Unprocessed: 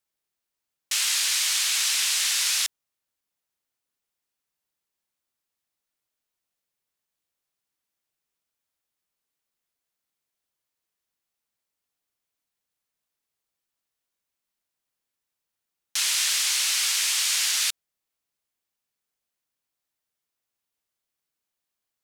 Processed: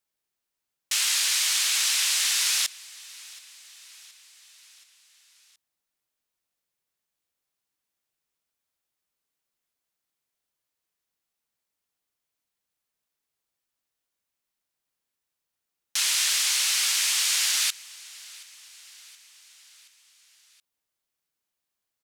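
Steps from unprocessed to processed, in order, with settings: feedback delay 724 ms, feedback 59%, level -22 dB

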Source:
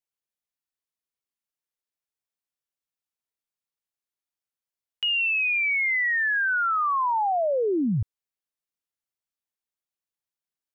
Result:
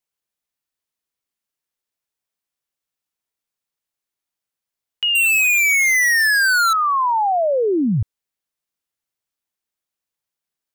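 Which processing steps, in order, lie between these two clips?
5.15–6.73 s: waveshaping leveller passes 5; trim +6 dB

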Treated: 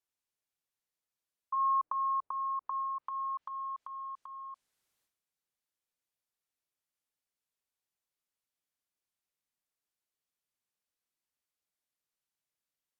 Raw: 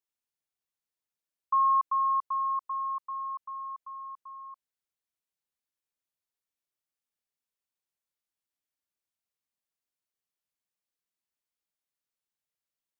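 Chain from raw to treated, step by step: transient shaper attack -8 dB, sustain +11 dB; low-pass that closes with the level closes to 910 Hz, closed at -29.5 dBFS

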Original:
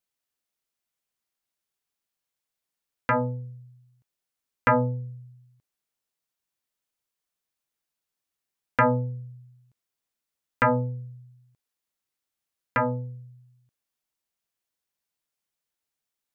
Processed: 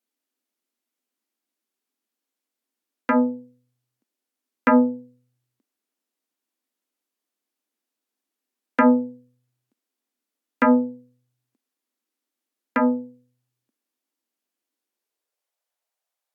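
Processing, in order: high-pass sweep 270 Hz -> 640 Hz, 14.76–15.58 s; resonant low shelf 180 Hz -7.5 dB, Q 3; AAC 96 kbps 44.1 kHz

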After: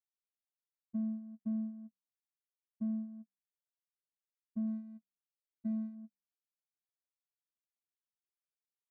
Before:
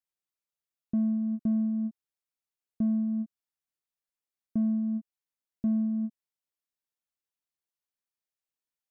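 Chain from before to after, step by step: 4.67–5.95 s: median filter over 41 samples; de-hum 64.11 Hz, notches 16; gate -28 dBFS, range -27 dB; trim -8.5 dB

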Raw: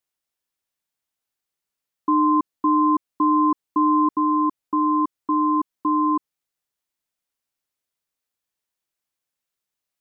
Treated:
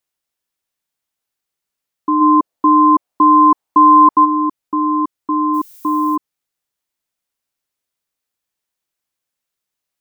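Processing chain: 2.20–4.24 s: peaking EQ 580 Hz -> 930 Hz +11 dB 1.3 oct; 5.53–6.15 s: added noise violet -46 dBFS; trim +3.5 dB

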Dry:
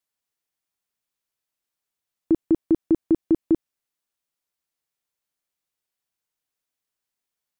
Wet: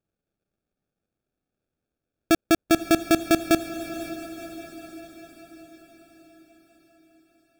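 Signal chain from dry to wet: sample-rate reducer 1 kHz, jitter 0%; echo that smears into a reverb 527 ms, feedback 57%, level -12 dB

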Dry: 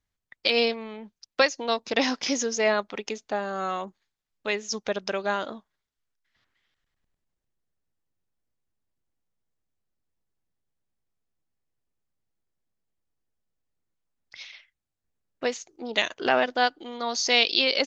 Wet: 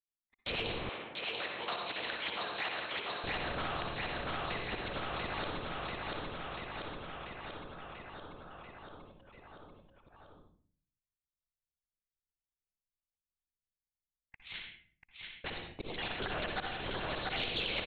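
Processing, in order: random holes in the spectrogram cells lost 24%; LPC vocoder at 8 kHz whisper; slow attack 335 ms; gate -53 dBFS, range -47 dB; feedback delay 689 ms, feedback 56%, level -6 dB; reverberation RT60 0.50 s, pre-delay 56 ms, DRR 5 dB; compression 4:1, threshold -35 dBFS, peak gain reduction 13 dB; 0.89–3.24 s: high-pass 680 Hz 12 dB/octave; spectrum-flattening compressor 2:1

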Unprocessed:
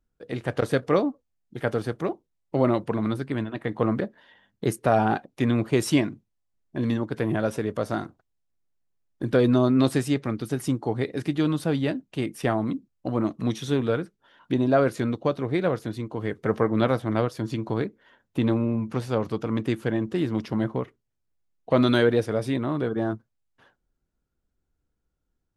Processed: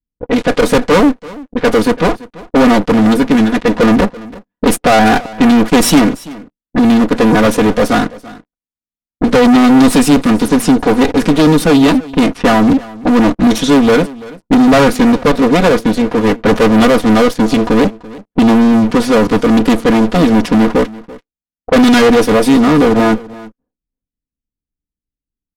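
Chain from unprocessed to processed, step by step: comb filter that takes the minimum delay 4.1 ms; waveshaping leveller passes 5; level-controlled noise filter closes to 300 Hz, open at -12 dBFS; peaking EQ 290 Hz +2.5 dB 0.35 oct; delay 336 ms -20 dB; trim +3 dB

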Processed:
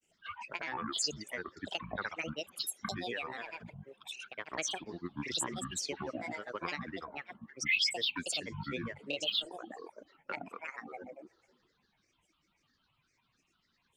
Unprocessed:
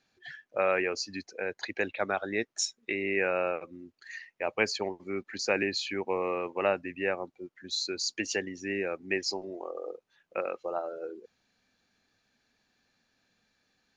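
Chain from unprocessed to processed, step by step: compression 3:1, threshold -31 dBFS, peak gain reduction 8.5 dB; plate-style reverb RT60 1.8 s, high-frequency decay 0.9×, DRR 12.5 dB; dynamic bell 3.5 kHz, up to +5 dB, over -52 dBFS, Q 1.2; static phaser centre 2.4 kHz, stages 6; band-passed feedback delay 77 ms, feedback 48%, band-pass 1.3 kHz, level -14 dB; reverb removal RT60 0.68 s; granulator, spray 100 ms, pitch spread up and down by 12 st; trim +2.5 dB

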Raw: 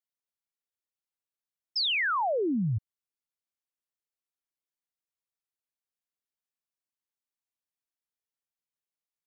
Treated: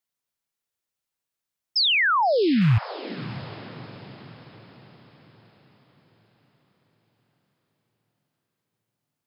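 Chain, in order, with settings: rattle on loud lows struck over -30 dBFS, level -33 dBFS; peaking EQ 130 Hz +3.5 dB 1 oct; echo that smears into a reverb 634 ms, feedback 48%, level -15 dB; trim +7 dB

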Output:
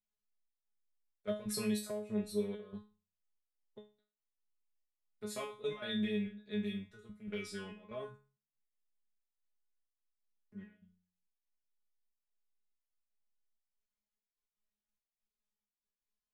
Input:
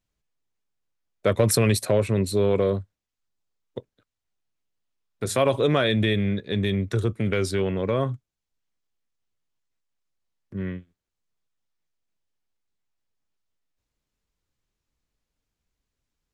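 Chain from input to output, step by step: peaking EQ 380 Hz -2 dB; de-hum 45.31 Hz, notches 4; trance gate "xxxxx..xxxxx..x." 165 bpm -12 dB; feedback comb 210 Hz, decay 0.34 s, harmonics all, mix 100%; trim -2 dB

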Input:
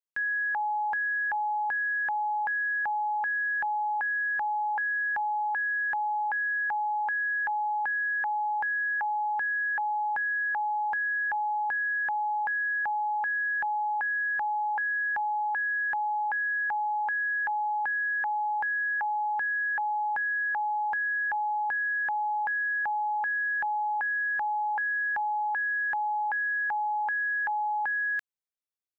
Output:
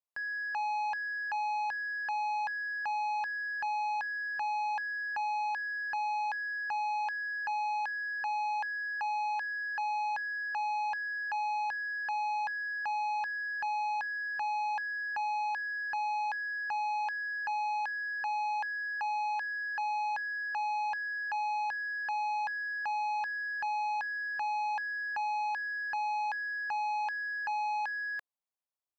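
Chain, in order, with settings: high-order bell 790 Hz +9 dB 1.3 oct; saturation -25 dBFS, distortion -10 dB; trim -6 dB

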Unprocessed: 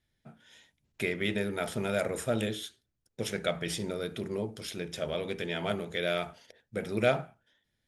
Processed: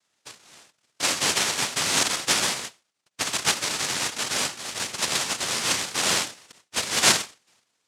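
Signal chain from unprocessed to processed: noise-vocoded speech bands 1; trim +7 dB

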